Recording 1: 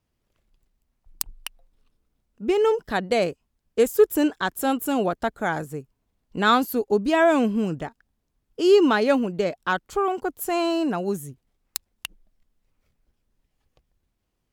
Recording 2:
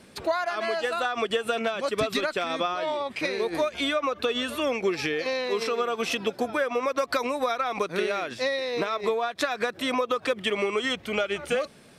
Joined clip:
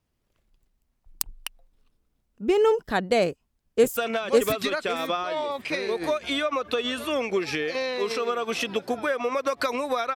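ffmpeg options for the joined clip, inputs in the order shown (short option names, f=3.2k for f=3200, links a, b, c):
-filter_complex "[0:a]apad=whole_dur=10.15,atrim=end=10.15,atrim=end=3.972[a];[1:a]atrim=start=1.478:end=7.66[b];[a][b]acrossfade=d=0.004:c1=hsin:c2=hsin,asplit=2[c][d];[d]afade=t=in:st=3.28:d=0.01,afade=t=out:st=3.97:d=0.01,aecho=0:1:550|1100|1650:0.891251|0.17825|0.03565[e];[c][e]amix=inputs=2:normalize=0"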